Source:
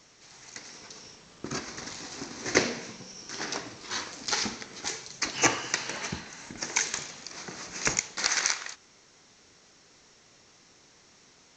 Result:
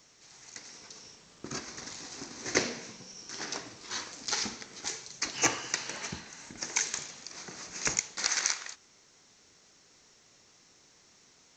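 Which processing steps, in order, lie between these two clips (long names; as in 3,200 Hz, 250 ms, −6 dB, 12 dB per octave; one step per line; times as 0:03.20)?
high-shelf EQ 7,600 Hz +9 dB
level −5 dB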